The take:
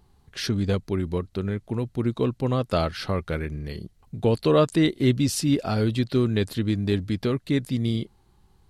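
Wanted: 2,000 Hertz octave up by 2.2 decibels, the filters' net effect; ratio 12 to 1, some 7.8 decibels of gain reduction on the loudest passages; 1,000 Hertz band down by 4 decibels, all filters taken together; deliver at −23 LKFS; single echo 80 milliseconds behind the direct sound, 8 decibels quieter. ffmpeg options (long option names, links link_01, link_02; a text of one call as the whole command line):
ffmpeg -i in.wav -af "equalizer=frequency=1000:width_type=o:gain=-7,equalizer=frequency=2000:width_type=o:gain=4.5,acompressor=threshold=-23dB:ratio=12,aecho=1:1:80:0.398,volume=6dB" out.wav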